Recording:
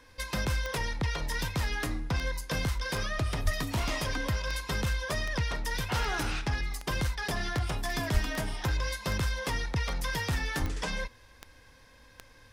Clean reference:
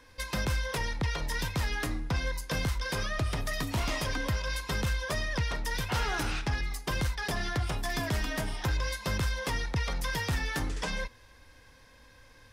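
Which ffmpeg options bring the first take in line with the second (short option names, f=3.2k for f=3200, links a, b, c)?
-filter_complex "[0:a]adeclick=t=4,asplit=3[a][b][c];[a]afade=t=out:st=3.44:d=0.02[d];[b]highpass=f=140:w=0.5412,highpass=f=140:w=1.3066,afade=t=in:st=3.44:d=0.02,afade=t=out:st=3.56:d=0.02[e];[c]afade=t=in:st=3.56:d=0.02[f];[d][e][f]amix=inputs=3:normalize=0,asplit=3[g][h][i];[g]afade=t=out:st=8.13:d=0.02[j];[h]highpass=f=140:w=0.5412,highpass=f=140:w=1.3066,afade=t=in:st=8.13:d=0.02,afade=t=out:st=8.25:d=0.02[k];[i]afade=t=in:st=8.25:d=0.02[l];[j][k][l]amix=inputs=3:normalize=0,asplit=3[m][n][o];[m]afade=t=out:st=10.6:d=0.02[p];[n]highpass=f=140:w=0.5412,highpass=f=140:w=1.3066,afade=t=in:st=10.6:d=0.02,afade=t=out:st=10.72:d=0.02[q];[o]afade=t=in:st=10.72:d=0.02[r];[p][q][r]amix=inputs=3:normalize=0"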